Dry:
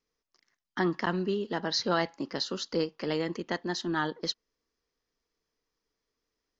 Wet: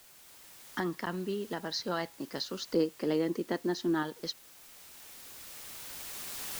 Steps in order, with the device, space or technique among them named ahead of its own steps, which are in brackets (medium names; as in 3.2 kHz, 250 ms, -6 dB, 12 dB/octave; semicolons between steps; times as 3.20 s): 2.74–4.03 s: peaking EQ 330 Hz +9.5 dB 1.8 oct; cheap recorder with automatic gain (white noise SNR 21 dB; recorder AGC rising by 7.9 dB/s); trim -6.5 dB